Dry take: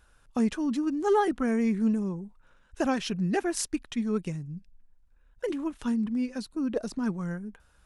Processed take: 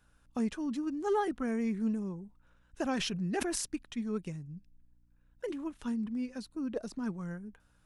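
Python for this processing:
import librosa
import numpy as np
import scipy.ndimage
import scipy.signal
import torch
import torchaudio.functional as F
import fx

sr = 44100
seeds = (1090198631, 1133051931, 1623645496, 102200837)

y = fx.add_hum(x, sr, base_hz=60, snr_db=34)
y = fx.sustainer(y, sr, db_per_s=30.0, at=(2.85, 3.66))
y = y * librosa.db_to_amplitude(-6.5)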